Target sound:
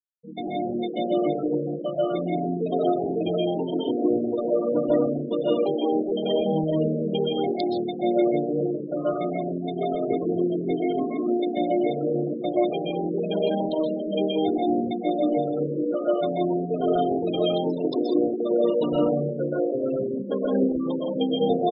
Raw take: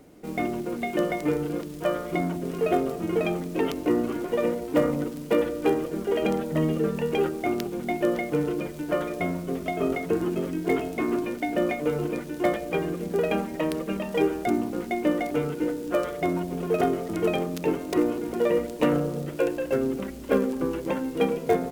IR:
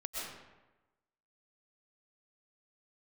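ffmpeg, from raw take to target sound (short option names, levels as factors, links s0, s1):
-filter_complex "[0:a]asplit=5[s0][s1][s2][s3][s4];[s1]adelay=84,afreqshift=78,volume=0.133[s5];[s2]adelay=168,afreqshift=156,volume=0.0653[s6];[s3]adelay=252,afreqshift=234,volume=0.032[s7];[s4]adelay=336,afreqshift=312,volume=0.0157[s8];[s0][s5][s6][s7][s8]amix=inputs=5:normalize=0,asettb=1/sr,asplit=3[s9][s10][s11];[s9]atrim=end=2.864[s12];[s10]atrim=start=2.86:end=4.53,asetpts=PTS-STARTPTS,afade=t=in:d=0.004:c=qsin,afade=t=out:st=1.666:d=0.004:c=qsin,acrossover=split=4600[s13][s14];[s14]acompressor=threshold=0.00112:ratio=4:attack=1:release=60[s15];[s13][s15]amix=inputs=2:normalize=0[s16];[s11]atrim=start=4.526[s17];[s12][s16]acrossfade=d=0.004:c1=hsin:c2=qsin[s18];[s18][s17]acrossfade=d=0.004:c1=qsin:c2=hsin,highshelf=f=2900:t=q:w=3:g=7.5[s19];[1:a]atrim=start_sample=2205,afade=t=out:st=0.36:d=0.01,atrim=end_sample=16317[s20];[s19][s20]afir=irnorm=-1:irlink=0,afftfilt=real='re*gte(hypot(re,im),0.0708)':imag='im*gte(hypot(re,im),0.0708)':win_size=1024:overlap=0.75"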